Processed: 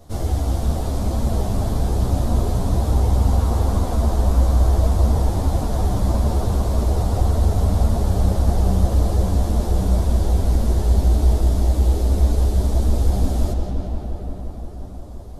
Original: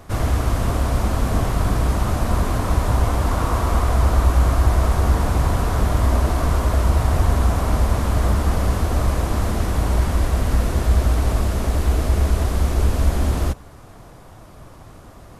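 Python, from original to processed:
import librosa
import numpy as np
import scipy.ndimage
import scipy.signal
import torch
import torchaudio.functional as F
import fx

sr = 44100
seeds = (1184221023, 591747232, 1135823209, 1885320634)

y = fx.band_shelf(x, sr, hz=1700.0, db=-10.5, octaves=1.7)
y = fx.echo_filtered(y, sr, ms=175, feedback_pct=84, hz=4900.0, wet_db=-5.5)
y = fx.ensemble(y, sr)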